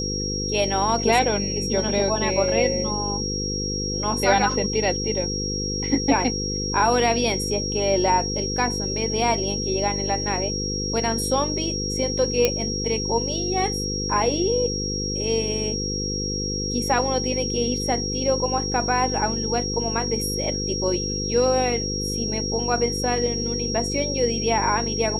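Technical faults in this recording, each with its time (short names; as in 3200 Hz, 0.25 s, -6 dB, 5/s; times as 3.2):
buzz 50 Hz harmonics 10 -29 dBFS
tone 5600 Hz -27 dBFS
12.45 pop -4 dBFS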